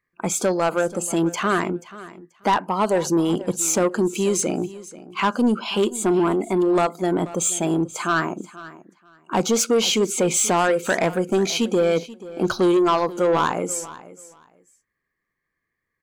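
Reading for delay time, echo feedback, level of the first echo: 0.484 s, 19%, -17.5 dB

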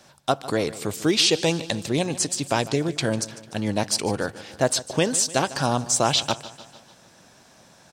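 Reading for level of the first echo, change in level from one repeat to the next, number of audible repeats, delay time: -17.0 dB, -5.0 dB, 4, 0.149 s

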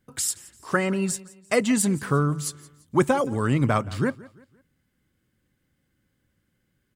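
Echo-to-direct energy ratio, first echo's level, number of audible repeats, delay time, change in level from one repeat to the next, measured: -20.5 dB, -21.0 dB, 2, 0.171 s, -8.0 dB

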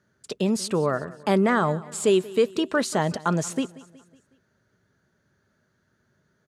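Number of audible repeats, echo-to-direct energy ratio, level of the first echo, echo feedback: 3, -19.0 dB, -20.0 dB, 50%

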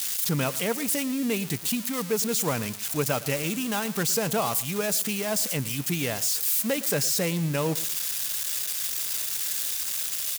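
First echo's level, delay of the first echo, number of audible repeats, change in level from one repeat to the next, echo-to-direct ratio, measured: -18.0 dB, 0.113 s, 2, -12.5 dB, -17.5 dB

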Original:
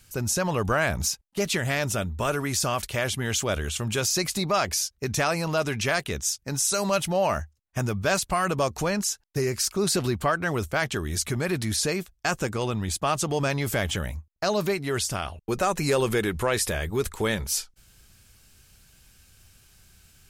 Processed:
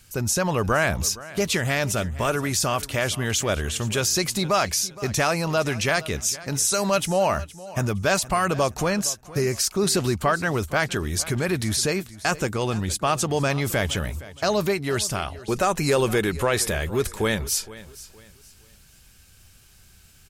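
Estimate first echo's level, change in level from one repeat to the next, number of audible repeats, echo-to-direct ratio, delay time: -18.0 dB, -10.0 dB, 2, -17.5 dB, 0.466 s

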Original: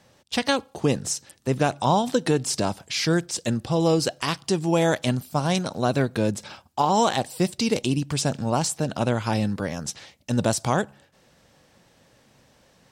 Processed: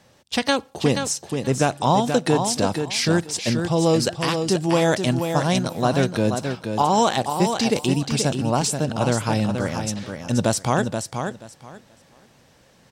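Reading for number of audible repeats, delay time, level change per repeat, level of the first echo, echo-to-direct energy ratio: 2, 0.48 s, -14.5 dB, -6.5 dB, -6.5 dB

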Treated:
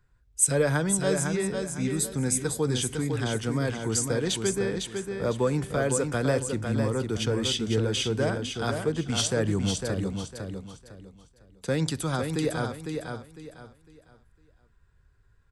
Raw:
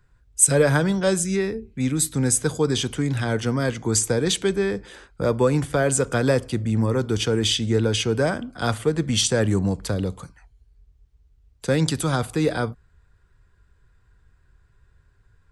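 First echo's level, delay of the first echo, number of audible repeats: -5.5 dB, 0.504 s, 3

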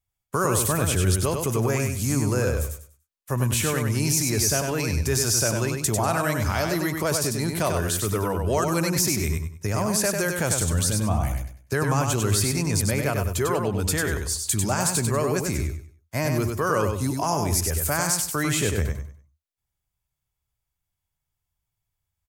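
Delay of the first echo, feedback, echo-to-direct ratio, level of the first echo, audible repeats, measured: 97 ms, 27%, -4.0 dB, -4.5 dB, 3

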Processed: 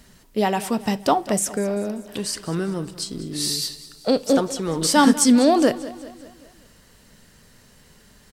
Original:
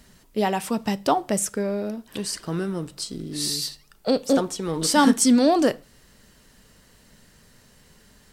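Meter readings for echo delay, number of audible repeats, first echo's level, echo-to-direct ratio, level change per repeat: 0.195 s, 4, -17.0 dB, -15.5 dB, -5.5 dB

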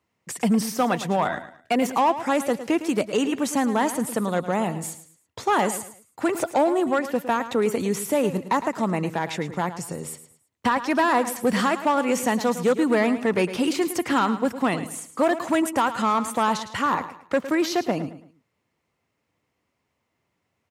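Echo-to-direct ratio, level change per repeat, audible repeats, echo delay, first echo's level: -12.0 dB, -10.0 dB, 3, 0.109 s, -12.5 dB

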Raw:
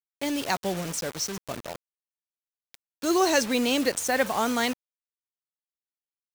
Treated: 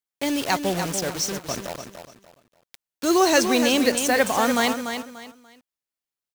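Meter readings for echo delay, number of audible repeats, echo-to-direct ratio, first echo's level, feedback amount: 0.292 s, 3, -7.5 dB, -8.0 dB, 28%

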